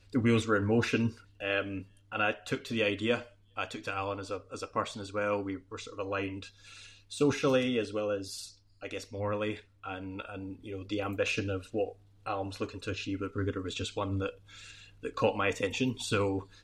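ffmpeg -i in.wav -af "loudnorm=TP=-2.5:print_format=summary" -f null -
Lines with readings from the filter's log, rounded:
Input Integrated:    -32.9 LUFS
Input True Peak:     -14.5 dBTP
Input LRA:             3.8 LU
Input Threshold:     -43.3 LUFS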